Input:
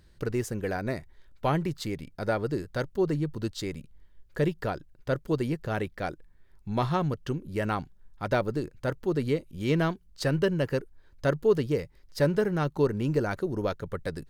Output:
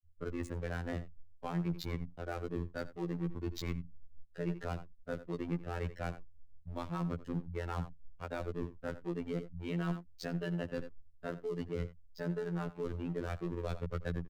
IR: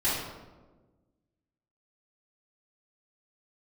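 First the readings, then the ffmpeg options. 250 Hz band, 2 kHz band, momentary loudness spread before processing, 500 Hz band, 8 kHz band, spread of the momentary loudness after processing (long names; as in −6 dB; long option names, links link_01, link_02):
−8.5 dB, −10.5 dB, 9 LU, −12.5 dB, −12.0 dB, 7 LU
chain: -filter_complex "[0:a]afftfilt=real='re*gte(hypot(re,im),0.0178)':imag='im*gte(hypot(re,im),0.0178)':win_size=1024:overlap=0.75,acrossover=split=200[link_01][link_02];[link_02]aeval=exprs='sgn(val(0))*max(abs(val(0))-0.0106,0)':channel_layout=same[link_03];[link_01][link_03]amix=inputs=2:normalize=0,aecho=1:1:87:0.106,areverse,acompressor=threshold=-34dB:ratio=10,areverse,afftfilt=real='hypot(re,im)*cos(PI*b)':imag='0':win_size=2048:overlap=0.75,acrossover=split=200|3000[link_04][link_05][link_06];[link_05]acompressor=threshold=-42dB:ratio=6[link_07];[link_04][link_07][link_06]amix=inputs=3:normalize=0,volume=6dB"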